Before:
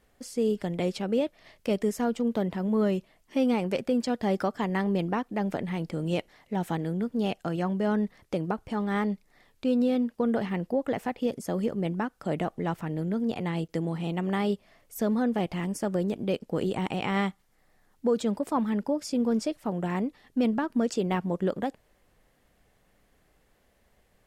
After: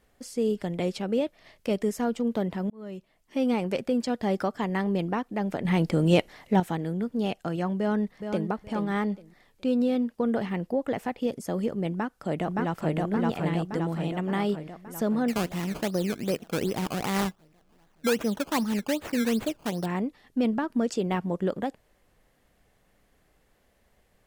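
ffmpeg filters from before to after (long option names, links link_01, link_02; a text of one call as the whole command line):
ffmpeg -i in.wav -filter_complex "[0:a]asplit=2[link_01][link_02];[link_02]afade=type=in:start_time=7.78:duration=0.01,afade=type=out:start_time=8.49:duration=0.01,aecho=0:1:420|840|1260:0.421697|0.0843393|0.0168679[link_03];[link_01][link_03]amix=inputs=2:normalize=0,asplit=2[link_04][link_05];[link_05]afade=type=in:start_time=11.91:duration=0.01,afade=type=out:start_time=12.96:duration=0.01,aecho=0:1:570|1140|1710|2280|2850|3420|3990|4560|5130|5700:1|0.6|0.36|0.216|0.1296|0.07776|0.046656|0.0279936|0.0167962|0.0100777[link_06];[link_04][link_06]amix=inputs=2:normalize=0,asettb=1/sr,asplit=3[link_07][link_08][link_09];[link_07]atrim=end=15.284[link_10];[link_08]atrim=start=15.28:end=19.86,asetpts=PTS-STARTPTS,afade=type=in:duration=0.004:curve=qsin,afade=type=out:start_time=4.576:duration=0.004:curve=qsin,acrusher=samples=16:mix=1:aa=0.000001:lfo=1:lforange=16:lforate=2.6[link_11];[link_09]atrim=start=19.856[link_12];[link_10][link_11]acrossfade=duration=0.004:curve1=hsin:curve2=qsin[link_13];[link_13][link_12]acrossfade=duration=0.004:curve1=qsin:curve2=hsin,asplit=4[link_14][link_15][link_16][link_17];[link_14]atrim=end=2.7,asetpts=PTS-STARTPTS,afade=type=out:start_time=2.696:duration=0.004:curve=hsin[link_18];[link_15]atrim=start=2.7:end=5.652,asetpts=PTS-STARTPTS,afade=type=in:duration=0.82[link_19];[link_16]atrim=start=5.648:end=6.602,asetpts=PTS-STARTPTS,volume=8dB[link_20];[link_17]atrim=start=6.598[link_21];[link_18][link_19]concat=n=2:v=0:a=1[link_22];[link_22][link_20]acrossfade=duration=0.004:curve1=hsin:curve2=hsin[link_23];[link_23][link_21]acrossfade=duration=0.004:curve1=hsin:curve2=hsin" out.wav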